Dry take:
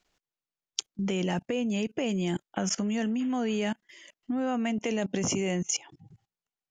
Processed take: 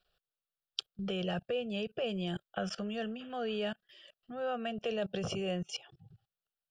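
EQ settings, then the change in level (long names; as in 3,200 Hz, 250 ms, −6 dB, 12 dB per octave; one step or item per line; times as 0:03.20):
phaser with its sweep stopped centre 1,400 Hz, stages 8
−1.0 dB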